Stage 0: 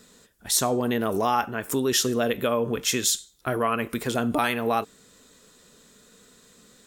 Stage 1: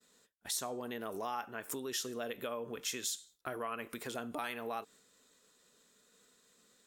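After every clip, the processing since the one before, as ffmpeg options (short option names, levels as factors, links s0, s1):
-af "acompressor=threshold=0.0251:ratio=2.5,lowshelf=f=210:g=-12,agate=range=0.0224:threshold=0.00316:ratio=3:detection=peak,volume=0.501"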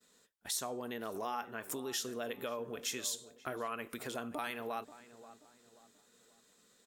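-filter_complex "[0:a]asplit=2[s0][s1];[s1]adelay=533,lowpass=f=1300:p=1,volume=0.188,asplit=2[s2][s3];[s3]adelay=533,lowpass=f=1300:p=1,volume=0.41,asplit=2[s4][s5];[s5]adelay=533,lowpass=f=1300:p=1,volume=0.41,asplit=2[s6][s7];[s7]adelay=533,lowpass=f=1300:p=1,volume=0.41[s8];[s0][s2][s4][s6][s8]amix=inputs=5:normalize=0"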